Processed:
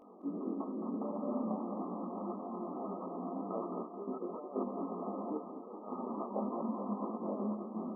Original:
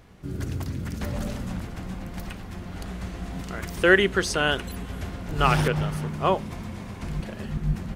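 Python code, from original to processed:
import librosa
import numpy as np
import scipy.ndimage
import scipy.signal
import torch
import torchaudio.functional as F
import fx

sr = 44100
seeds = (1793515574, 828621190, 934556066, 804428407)

y = fx.over_compress(x, sr, threshold_db=-30.0, ratio=-0.5)
y = fx.brickwall_bandpass(y, sr, low_hz=200.0, high_hz=1300.0)
y = fx.echo_feedback(y, sr, ms=216, feedback_pct=41, wet_db=-7)
y = fx.detune_double(y, sr, cents=15)
y = y * librosa.db_to_amplitude(1.5)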